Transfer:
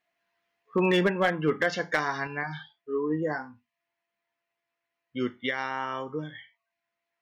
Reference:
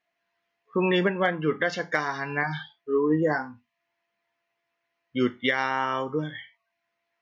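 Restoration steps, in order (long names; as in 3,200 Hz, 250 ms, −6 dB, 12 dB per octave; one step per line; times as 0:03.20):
clipped peaks rebuilt −15.5 dBFS
level 0 dB, from 0:02.27 +5.5 dB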